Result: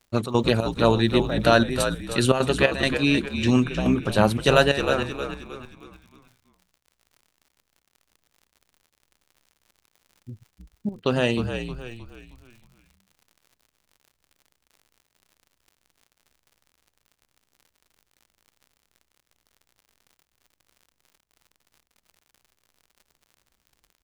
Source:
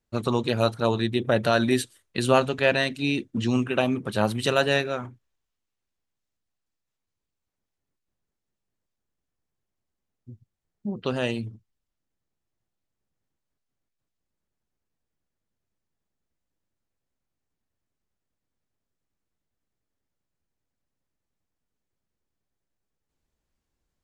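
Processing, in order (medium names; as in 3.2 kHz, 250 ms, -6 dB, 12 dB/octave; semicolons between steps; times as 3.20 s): trance gate "xxx.xxx..xxx" 175 bpm -12 dB; crackle 50 per s -47 dBFS; on a send: frequency-shifting echo 312 ms, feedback 41%, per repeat -61 Hz, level -8 dB; on the sum: trim +4.5 dB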